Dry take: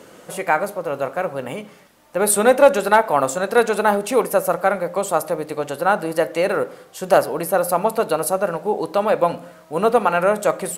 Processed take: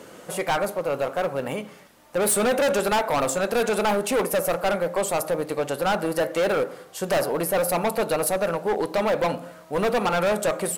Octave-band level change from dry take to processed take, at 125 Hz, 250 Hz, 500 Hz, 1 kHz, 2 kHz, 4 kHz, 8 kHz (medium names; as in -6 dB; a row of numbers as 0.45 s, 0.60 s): -1.0 dB, -2.5 dB, -4.5 dB, -6.5 dB, -4.5 dB, +1.5 dB, -2.0 dB